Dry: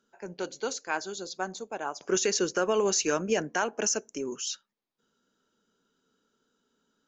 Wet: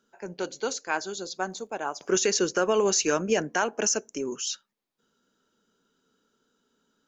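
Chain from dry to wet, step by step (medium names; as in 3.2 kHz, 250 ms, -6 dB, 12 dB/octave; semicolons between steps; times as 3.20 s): 1.49–2.14 s: crackle 96 per s -> 300 per s -62 dBFS; trim +2.5 dB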